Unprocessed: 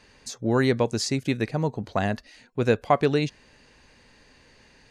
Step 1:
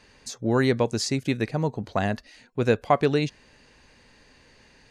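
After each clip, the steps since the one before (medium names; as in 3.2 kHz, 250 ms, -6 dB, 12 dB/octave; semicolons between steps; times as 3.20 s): no audible change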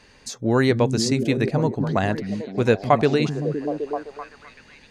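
repeats whose band climbs or falls 257 ms, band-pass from 170 Hz, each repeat 0.7 oct, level -2 dB; trim +3 dB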